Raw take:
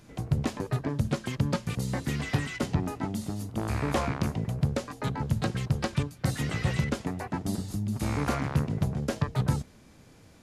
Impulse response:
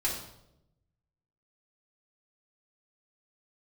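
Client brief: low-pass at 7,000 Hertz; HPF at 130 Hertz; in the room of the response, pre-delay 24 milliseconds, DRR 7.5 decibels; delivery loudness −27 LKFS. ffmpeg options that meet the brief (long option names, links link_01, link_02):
-filter_complex "[0:a]highpass=130,lowpass=7000,asplit=2[link_01][link_02];[1:a]atrim=start_sample=2205,adelay=24[link_03];[link_02][link_03]afir=irnorm=-1:irlink=0,volume=-14dB[link_04];[link_01][link_04]amix=inputs=2:normalize=0,volume=4.5dB"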